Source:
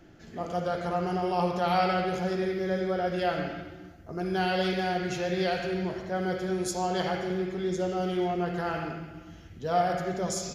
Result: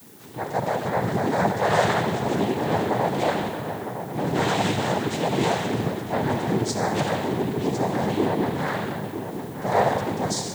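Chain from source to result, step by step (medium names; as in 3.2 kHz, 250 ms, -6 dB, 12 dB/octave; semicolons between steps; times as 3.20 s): noise-vocoded speech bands 6; added noise blue -56 dBFS; filtered feedback delay 957 ms, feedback 60%, low-pass 2.4 kHz, level -9.5 dB; trim +5 dB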